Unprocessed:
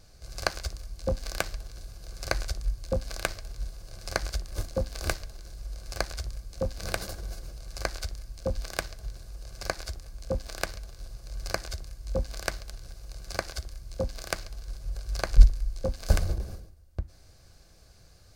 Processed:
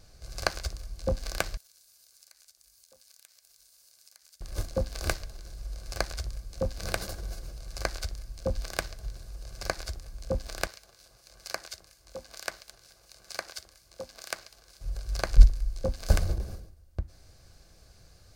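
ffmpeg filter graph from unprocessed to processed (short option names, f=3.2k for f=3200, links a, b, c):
-filter_complex "[0:a]asettb=1/sr,asplit=3[a][b][c];[a]atrim=end=1.574[d];[b]atrim=start=1.57:end=4.41,asetpts=PTS-STARTPTS,afade=t=in:d=0.004:c=qsin,afade=t=out:st=2.836:d=0.004:c=qsin,aderivative,acompressor=threshold=-55dB:ratio=4:attack=3.2:release=140:knee=1:detection=peak[e];[c]atrim=start=4.406[f];[d][e]acrossfade=d=0.004:c1=hsin:c2=qsin[g];[g][f]acrossfade=d=0.004:c1=qsin:c2=hsin,asettb=1/sr,asplit=3[h][i][j];[h]atrim=end=10.674[k];[i]atrim=start=10.67:end=14.81,asetpts=PTS-STARTPTS,afade=t=in:d=0.004:c=qsin,afade=t=out:st=4.136:d=0.004:c=qsin,highpass=f=660:p=1,acrossover=split=1700[l][m];[l]aeval=exprs='val(0)*(1-0.5/2+0.5/2*cos(2*PI*4.3*n/s))':c=same[n];[m]aeval=exprs='val(0)*(1-0.5/2-0.5/2*cos(2*PI*4.3*n/s))':c=same[o];[n][o]amix=inputs=2:normalize=0[p];[j]atrim=start=14.806[q];[k][p]acrossfade=d=0.004:c1=hsin:c2=qsin[r];[r][q]acrossfade=d=0.004:c1=qsin:c2=hsin"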